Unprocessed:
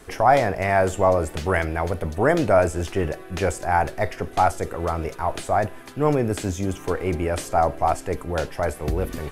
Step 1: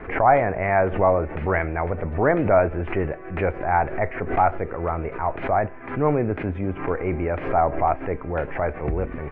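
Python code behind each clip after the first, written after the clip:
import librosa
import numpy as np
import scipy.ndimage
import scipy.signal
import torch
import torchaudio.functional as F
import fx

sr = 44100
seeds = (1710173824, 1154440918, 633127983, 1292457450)

y = scipy.signal.sosfilt(scipy.signal.ellip(4, 1.0, 80, 2300.0, 'lowpass', fs=sr, output='sos'), x)
y = fx.pre_swell(y, sr, db_per_s=100.0)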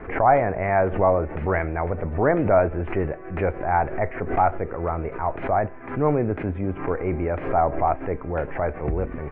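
y = fx.high_shelf(x, sr, hz=2800.0, db=-9.0)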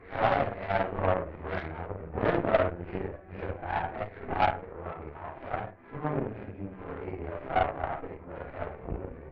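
y = fx.phase_scramble(x, sr, seeds[0], window_ms=200)
y = fx.room_flutter(y, sr, wall_m=9.0, rt60_s=0.32)
y = fx.cheby_harmonics(y, sr, harmonics=(3, 6, 7), levels_db=(-18, -23, -26), full_scale_db=-3.5)
y = y * 10.0 ** (-4.0 / 20.0)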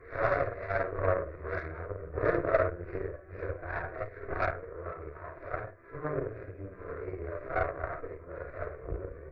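y = fx.fixed_phaser(x, sr, hz=830.0, stages=6)
y = y * 10.0 ** (1.0 / 20.0)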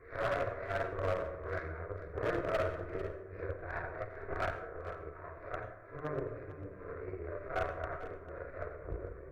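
y = np.clip(10.0 ** (23.5 / 20.0) * x, -1.0, 1.0) / 10.0 ** (23.5 / 20.0)
y = y + 10.0 ** (-14.5 / 20.0) * np.pad(y, (int(447 * sr / 1000.0), 0))[:len(y)]
y = fx.rev_plate(y, sr, seeds[1], rt60_s=1.1, hf_ratio=0.3, predelay_ms=75, drr_db=10.5)
y = y * 10.0 ** (-4.0 / 20.0)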